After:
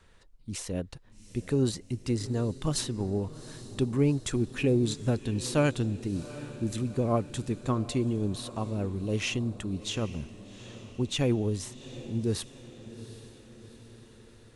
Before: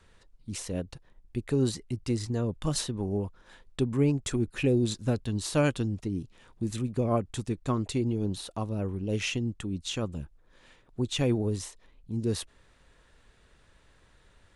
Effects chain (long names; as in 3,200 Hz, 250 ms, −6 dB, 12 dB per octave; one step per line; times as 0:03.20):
feedback delay with all-pass diffusion 774 ms, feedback 56%, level −15.5 dB